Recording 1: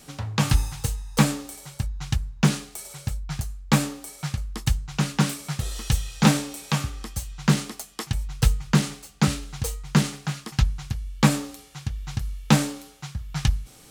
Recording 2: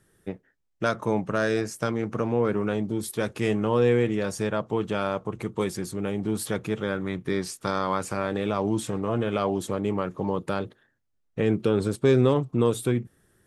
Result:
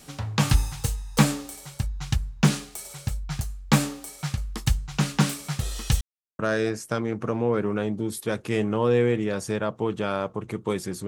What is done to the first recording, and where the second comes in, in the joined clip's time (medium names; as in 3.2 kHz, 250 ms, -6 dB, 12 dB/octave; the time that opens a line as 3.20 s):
recording 1
6.01–6.39 s: mute
6.39 s: go over to recording 2 from 1.30 s